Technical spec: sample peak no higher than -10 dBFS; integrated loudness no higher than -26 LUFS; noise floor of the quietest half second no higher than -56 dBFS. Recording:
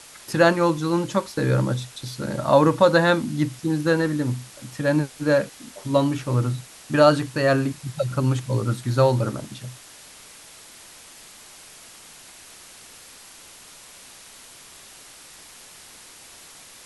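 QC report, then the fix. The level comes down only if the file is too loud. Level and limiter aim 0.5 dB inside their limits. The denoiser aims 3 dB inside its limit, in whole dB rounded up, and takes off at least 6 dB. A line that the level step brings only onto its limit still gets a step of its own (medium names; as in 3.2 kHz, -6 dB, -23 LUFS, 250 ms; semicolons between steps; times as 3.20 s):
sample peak -3.5 dBFS: fail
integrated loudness -22.0 LUFS: fail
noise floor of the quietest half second -46 dBFS: fail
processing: noise reduction 9 dB, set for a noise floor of -46 dBFS; trim -4.5 dB; peak limiter -10.5 dBFS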